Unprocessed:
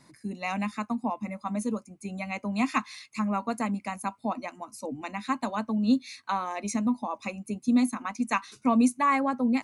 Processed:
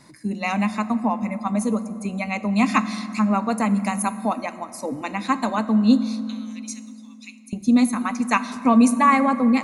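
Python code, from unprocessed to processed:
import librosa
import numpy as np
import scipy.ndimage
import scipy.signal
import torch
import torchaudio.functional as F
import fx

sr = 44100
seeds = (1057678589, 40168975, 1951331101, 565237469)

y = fx.high_shelf(x, sr, hz=6600.0, db=10.5, at=(3.76, 4.35))
y = fx.ladder_highpass(y, sr, hz=2600.0, resonance_pct=25, at=(6.03, 7.53))
y = fx.rev_fdn(y, sr, rt60_s=2.6, lf_ratio=1.35, hf_ratio=0.5, size_ms=28.0, drr_db=12.0)
y = y * 10.0 ** (7.0 / 20.0)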